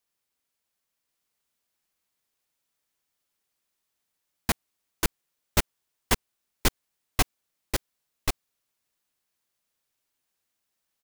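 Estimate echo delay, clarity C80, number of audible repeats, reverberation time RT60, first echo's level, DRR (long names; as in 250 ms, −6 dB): 1,086 ms, no reverb audible, 1, no reverb audible, −3.0 dB, no reverb audible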